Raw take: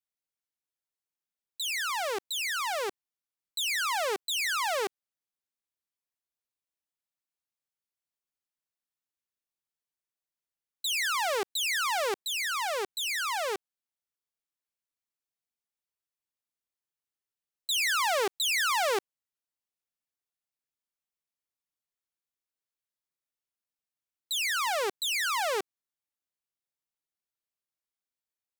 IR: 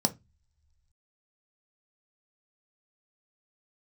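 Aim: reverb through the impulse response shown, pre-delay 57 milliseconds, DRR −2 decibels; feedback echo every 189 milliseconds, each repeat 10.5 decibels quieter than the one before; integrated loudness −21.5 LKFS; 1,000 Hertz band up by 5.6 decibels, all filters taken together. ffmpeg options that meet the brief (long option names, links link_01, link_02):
-filter_complex "[0:a]equalizer=frequency=1000:width_type=o:gain=7,aecho=1:1:189|378|567:0.299|0.0896|0.0269,asplit=2[link_01][link_02];[1:a]atrim=start_sample=2205,adelay=57[link_03];[link_02][link_03]afir=irnorm=-1:irlink=0,volume=-5.5dB[link_04];[link_01][link_04]amix=inputs=2:normalize=0"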